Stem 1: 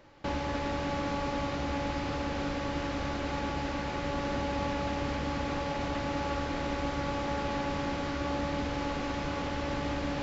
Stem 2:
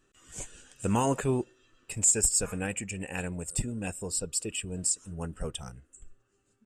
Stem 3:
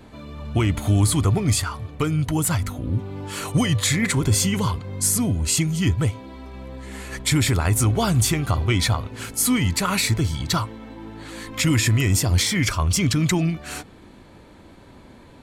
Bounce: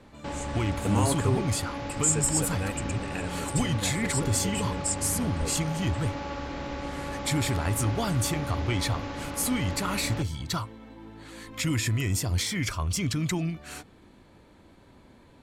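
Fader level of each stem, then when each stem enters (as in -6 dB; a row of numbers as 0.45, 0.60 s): -2.5, -1.5, -8.0 dB; 0.00, 0.00, 0.00 s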